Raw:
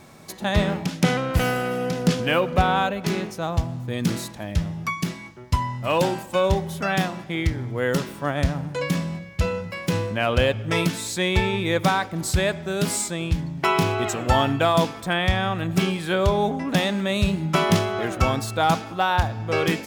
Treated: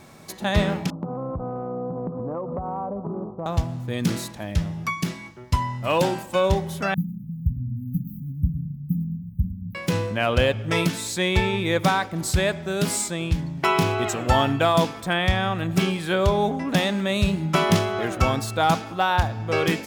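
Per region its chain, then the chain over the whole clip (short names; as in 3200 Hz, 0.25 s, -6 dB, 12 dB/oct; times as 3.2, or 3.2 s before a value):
0.9–3.46 steep low-pass 1200 Hz 72 dB/oct + compressor 12:1, threshold -25 dBFS
6.94–9.75 upward compressor, threshold -25 dBFS + brick-wall FIR band-stop 260–13000 Hz + feedback echo 0.105 s, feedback 33%, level -15 dB
whole clip: dry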